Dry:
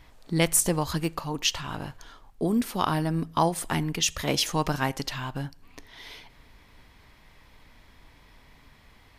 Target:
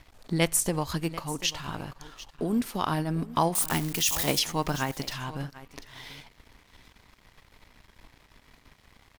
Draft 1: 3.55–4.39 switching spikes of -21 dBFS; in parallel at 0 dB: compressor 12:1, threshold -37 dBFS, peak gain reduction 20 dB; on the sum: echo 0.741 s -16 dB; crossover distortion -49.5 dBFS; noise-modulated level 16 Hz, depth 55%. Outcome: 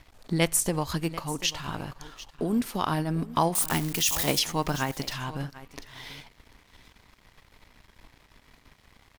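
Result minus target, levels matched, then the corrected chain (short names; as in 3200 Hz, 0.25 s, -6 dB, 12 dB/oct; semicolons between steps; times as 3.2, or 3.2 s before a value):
compressor: peak gain reduction -6 dB
3.55–4.39 switching spikes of -21 dBFS; in parallel at 0 dB: compressor 12:1, threshold -43.5 dBFS, peak gain reduction 26 dB; on the sum: echo 0.741 s -16 dB; crossover distortion -49.5 dBFS; noise-modulated level 16 Hz, depth 55%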